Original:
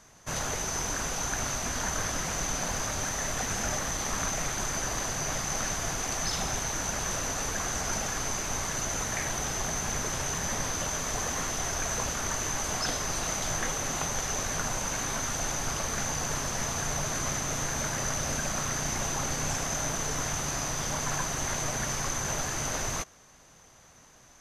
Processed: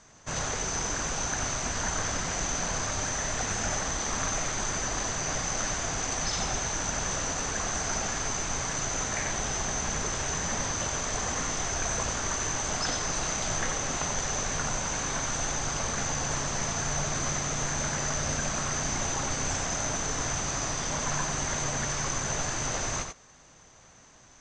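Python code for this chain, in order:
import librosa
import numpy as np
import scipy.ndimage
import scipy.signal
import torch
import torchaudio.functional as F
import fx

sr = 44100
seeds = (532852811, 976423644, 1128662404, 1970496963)

p1 = fx.brickwall_lowpass(x, sr, high_hz=8600.0)
y = p1 + fx.echo_single(p1, sr, ms=90, db=-6.5, dry=0)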